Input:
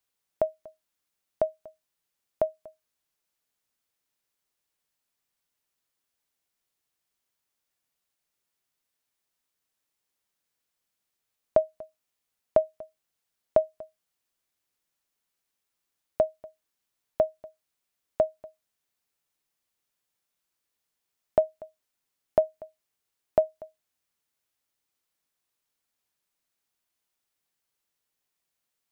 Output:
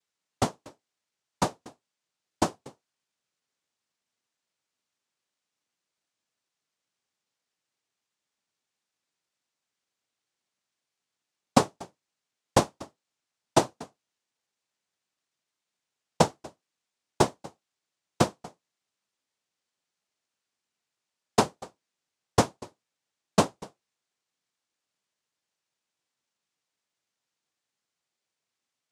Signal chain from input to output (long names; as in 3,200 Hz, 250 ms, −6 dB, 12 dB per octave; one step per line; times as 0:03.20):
cochlear-implant simulation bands 2
level +1 dB